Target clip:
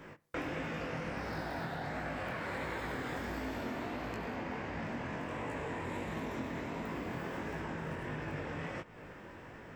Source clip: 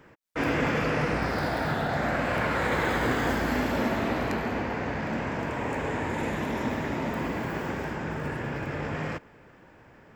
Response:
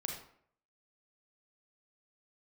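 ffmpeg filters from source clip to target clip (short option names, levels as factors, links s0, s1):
-filter_complex "[0:a]acompressor=threshold=0.00891:ratio=6,flanger=delay=19:depth=5.9:speed=1.4,asetrate=45938,aresample=44100,asplit=2[s0][s1];[1:a]atrim=start_sample=2205[s2];[s1][s2]afir=irnorm=-1:irlink=0,volume=0.133[s3];[s0][s3]amix=inputs=2:normalize=0,volume=1.88"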